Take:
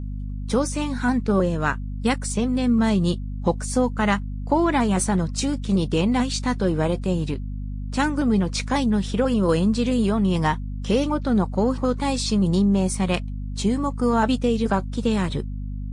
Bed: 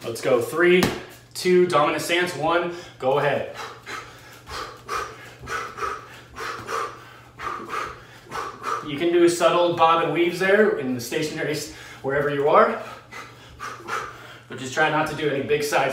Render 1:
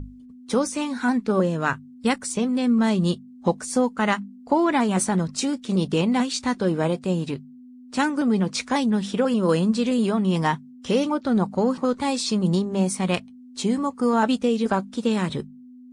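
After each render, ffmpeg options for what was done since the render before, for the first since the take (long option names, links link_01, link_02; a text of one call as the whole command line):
ffmpeg -i in.wav -af "bandreject=frequency=50:width_type=h:width=6,bandreject=frequency=100:width_type=h:width=6,bandreject=frequency=150:width_type=h:width=6,bandreject=frequency=200:width_type=h:width=6" out.wav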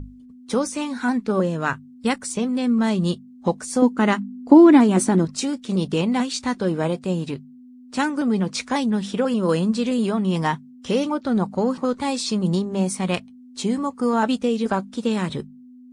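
ffmpeg -i in.wav -filter_complex "[0:a]asettb=1/sr,asplit=3[link_01][link_02][link_03];[link_01]atrim=end=3.824[link_04];[link_02]atrim=start=3.82:end=5.25,asetpts=PTS-STARTPTS,afade=type=in:duration=0.004:curve=qsin,afade=type=out:start_time=1.426:duration=0.004:curve=qsin,equalizer=frequency=300:width_type=o:width=0.72:gain=14.5[link_05];[link_03]atrim=start=5.246[link_06];[link_04][link_05]acrossfade=duration=0.004:curve1=hsin:curve2=qsin[link_07];[link_07][link_06]acrossfade=duration=0.004:curve1=qsin:curve2=hsin" out.wav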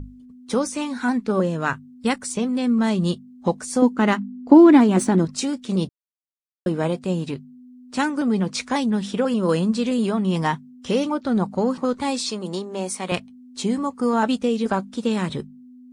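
ffmpeg -i in.wav -filter_complex "[0:a]asettb=1/sr,asplit=3[link_01][link_02][link_03];[link_01]atrim=end=3.974[link_04];[link_02]atrim=start=3.97:end=5.18,asetpts=PTS-STARTPTS,afade=type=in:duration=0.004:curve=qsin,afade=type=out:start_time=1.206:duration=0.004:curve=qsin,adynamicsmooth=sensitivity=6:basefreq=6400[link_05];[link_03]atrim=start=5.176[link_06];[link_04][link_05]acrossfade=duration=0.004:curve1=hsin:curve2=qsin[link_07];[link_07][link_06]acrossfade=duration=0.004:curve1=qsin:curve2=hsin,asettb=1/sr,asplit=3[link_08][link_09][link_10];[link_08]atrim=end=12.304[link_11];[link_09]atrim=start=12.3:end=13.12,asetpts=PTS-STARTPTS,afade=type=in:duration=0.004:curve=qsin,afade=type=out:start_time=0.816:duration=0.004:curve=qsin,highpass=340[link_12];[link_10]atrim=start=13.116[link_13];[link_11][link_12]acrossfade=duration=0.004:curve1=hsin:curve2=qsin[link_14];[link_14][link_13]acrossfade=duration=0.004:curve1=qsin:curve2=hsin,asplit=3[link_15][link_16][link_17];[link_15]atrim=end=5.89,asetpts=PTS-STARTPTS,afade=type=out:start_time=5.886:duration=0.004:curve=hsin[link_18];[link_16]atrim=start=5.89:end=6.66,asetpts=PTS-STARTPTS,volume=0[link_19];[link_17]atrim=start=6.66,asetpts=PTS-STARTPTS,afade=type=in:duration=0.004:curve=hsin[link_20];[link_18][link_19][link_20]concat=n=3:v=0:a=1" out.wav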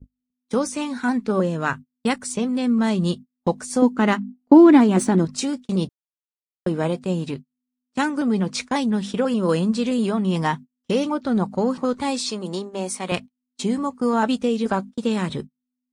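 ffmpeg -i in.wav -af "agate=range=-38dB:threshold=-32dB:ratio=16:detection=peak" out.wav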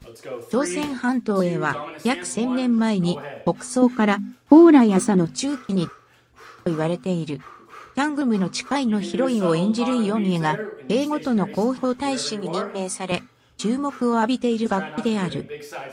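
ffmpeg -i in.wav -i bed.wav -filter_complex "[1:a]volume=-13.5dB[link_01];[0:a][link_01]amix=inputs=2:normalize=0" out.wav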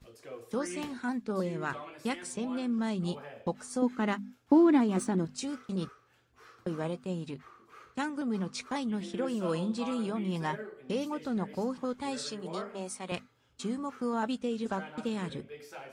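ffmpeg -i in.wav -af "volume=-11.5dB" out.wav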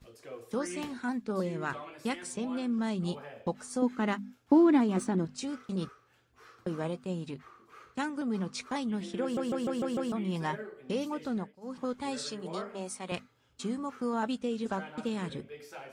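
ffmpeg -i in.wav -filter_complex "[0:a]asettb=1/sr,asplit=3[link_01][link_02][link_03];[link_01]atrim=end=4.924[link_04];[link_02]atrim=start=4.92:end=5.6,asetpts=PTS-STARTPTS,afade=type=in:duration=0.004:curve=qsin,afade=type=out:start_time=0.676:duration=0.004:curve=qsin,highshelf=frequency=7200:gain=-5[link_05];[link_03]atrim=start=5.596[link_06];[link_04][link_05]acrossfade=duration=0.004:curve1=hsin:curve2=qsin[link_07];[link_07][link_06]acrossfade=duration=0.004:curve1=qsin:curve2=hsin,asplit=9[link_08][link_09][link_10][link_11][link_12][link_13][link_14][link_15][link_16];[link_08]atrim=end=9.372[link_17];[link_09]atrim=start=9.218:end=9.372[link_18];[link_10]atrim=start=9.218:end=9.372[link_19];[link_11]atrim=start=9.218:end=9.372[link_20];[link_12]atrim=start=9.218:end=9.372[link_21];[link_13]atrim=start=9.218:end=9.372[link_22];[link_14]atrim=start=10.118:end=11.53,asetpts=PTS-STARTPTS,afade=type=out:start_time=1.152:duration=0.26:curve=qsin:silence=0.0707946[link_23];[link_15]atrim=start=11.53:end=11.61,asetpts=PTS-STARTPTS,volume=-23dB[link_24];[link_16]atrim=start=11.61,asetpts=PTS-STARTPTS,afade=type=in:duration=0.26:curve=qsin:silence=0.0707946[link_25];[link_17][link_18]acrossfade=duration=0.004:curve1=hsin:curve2=hsin[link_26];[link_26][link_19]acrossfade=duration=0.004:curve1=hsin:curve2=hsin[link_27];[link_27][link_20]acrossfade=duration=0.004:curve1=hsin:curve2=hsin[link_28];[link_28][link_21]acrossfade=duration=0.004:curve1=hsin:curve2=hsin[link_29];[link_29][link_22]acrossfade=duration=0.004:curve1=hsin:curve2=hsin[link_30];[link_23][link_24][link_25]concat=n=3:v=0:a=1[link_31];[link_30][link_31]acrossfade=duration=0.004:curve1=hsin:curve2=hsin" out.wav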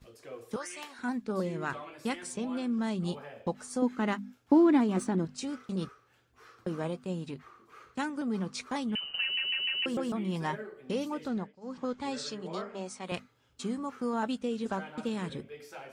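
ffmpeg -i in.wav -filter_complex "[0:a]asettb=1/sr,asplit=3[link_01][link_02][link_03];[link_01]atrim=end=0.564[link_04];[link_02]atrim=start=0.56:end=0.99,asetpts=PTS-STARTPTS,afade=type=in:duration=0.004:curve=qsin,afade=type=out:start_time=0.426:duration=0.004:curve=qsin,highpass=770[link_05];[link_03]atrim=start=0.986[link_06];[link_04][link_05]acrossfade=duration=0.004:curve1=hsin:curve2=qsin[link_07];[link_07][link_06]acrossfade=duration=0.004:curve1=qsin:curve2=hsin,asettb=1/sr,asplit=3[link_08][link_09][link_10];[link_08]atrim=end=8.954[link_11];[link_09]atrim=start=8.95:end=9.86,asetpts=PTS-STARTPTS,afade=type=in:duration=0.004:curve=qsin,afade=type=out:start_time=0.906:duration=0.004:curve=qsin,lowpass=frequency=2700:width_type=q:width=0.5098,lowpass=frequency=2700:width_type=q:width=0.6013,lowpass=frequency=2700:width_type=q:width=0.9,lowpass=frequency=2700:width_type=q:width=2.563,afreqshift=-3200[link_12];[link_10]atrim=start=9.856[link_13];[link_11][link_12]acrossfade=duration=0.004:curve1=hsin:curve2=qsin[link_14];[link_14][link_13]acrossfade=duration=0.004:curve1=qsin:curve2=hsin,asettb=1/sr,asplit=3[link_15][link_16][link_17];[link_15]atrim=end=11.284[link_18];[link_16]atrim=start=11.28:end=13.04,asetpts=PTS-STARTPTS,afade=type=in:duration=0.004:curve=qsin,afade=type=out:start_time=1.756:duration=0.004:curve=qsin,lowpass=frequency=7700:width=0.5412,lowpass=frequency=7700:width=1.3066[link_19];[link_17]atrim=start=13.036[link_20];[link_18][link_19]acrossfade=duration=0.004:curve1=hsin:curve2=qsin[link_21];[link_21][link_20]acrossfade=duration=0.004:curve1=qsin:curve2=hsin" out.wav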